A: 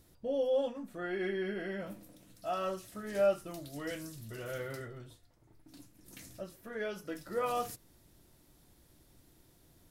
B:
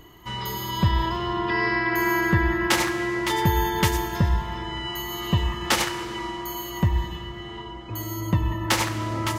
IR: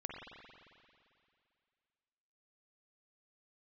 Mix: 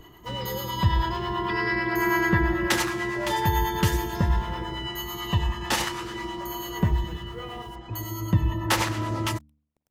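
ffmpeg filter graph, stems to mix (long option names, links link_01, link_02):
-filter_complex "[0:a]lowpass=frequency=4000:poles=1,acrusher=bits=8:mix=0:aa=0.000001,volume=-6.5dB,asplit=2[link_01][link_02];[link_02]volume=-8.5dB[link_03];[1:a]bandreject=frequency=2200:width=30,aphaser=in_gain=1:out_gain=1:delay=1.2:decay=0.23:speed=0.45:type=sinusoidal,volume=0dB[link_04];[2:a]atrim=start_sample=2205[link_05];[link_03][link_05]afir=irnorm=-1:irlink=0[link_06];[link_01][link_04][link_06]amix=inputs=3:normalize=0,acrossover=split=540[link_07][link_08];[link_07]aeval=exprs='val(0)*(1-0.5/2+0.5/2*cos(2*PI*9.1*n/s))':channel_layout=same[link_09];[link_08]aeval=exprs='val(0)*(1-0.5/2-0.5/2*cos(2*PI*9.1*n/s))':channel_layout=same[link_10];[link_09][link_10]amix=inputs=2:normalize=0,bandreject=frequency=74.24:width_type=h:width=4,bandreject=frequency=148.48:width_type=h:width=4,bandreject=frequency=222.72:width_type=h:width=4,bandreject=frequency=296.96:width_type=h:width=4"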